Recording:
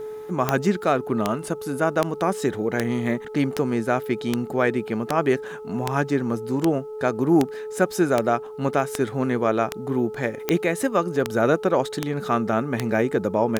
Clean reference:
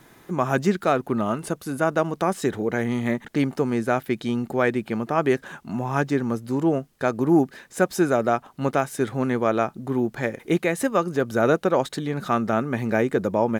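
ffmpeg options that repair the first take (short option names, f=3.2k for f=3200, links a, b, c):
-af "adeclick=t=4,bandreject=f=431.7:t=h:w=4,bandreject=f=863.4:t=h:w=4,bandreject=f=1.2951k:t=h:w=4,bandreject=f=430:w=30"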